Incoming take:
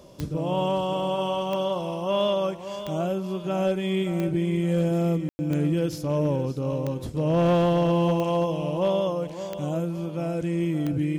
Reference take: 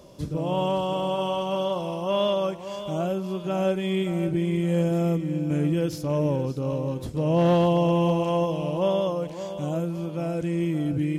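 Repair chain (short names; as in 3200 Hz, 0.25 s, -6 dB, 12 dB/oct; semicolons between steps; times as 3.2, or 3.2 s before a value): clip repair -15.5 dBFS; de-click; room tone fill 5.29–5.39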